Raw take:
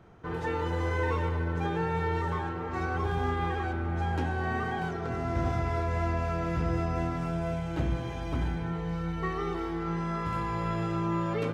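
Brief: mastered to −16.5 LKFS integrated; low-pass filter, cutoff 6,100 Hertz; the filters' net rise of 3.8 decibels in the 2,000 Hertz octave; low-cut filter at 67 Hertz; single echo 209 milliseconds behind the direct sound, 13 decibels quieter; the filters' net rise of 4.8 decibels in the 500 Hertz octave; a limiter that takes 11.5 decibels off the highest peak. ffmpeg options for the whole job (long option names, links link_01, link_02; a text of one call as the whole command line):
ffmpeg -i in.wav -af "highpass=67,lowpass=6100,equalizer=frequency=500:width_type=o:gain=6,equalizer=frequency=2000:width_type=o:gain=4.5,alimiter=level_in=1.5dB:limit=-24dB:level=0:latency=1,volume=-1.5dB,aecho=1:1:209:0.224,volume=17.5dB" out.wav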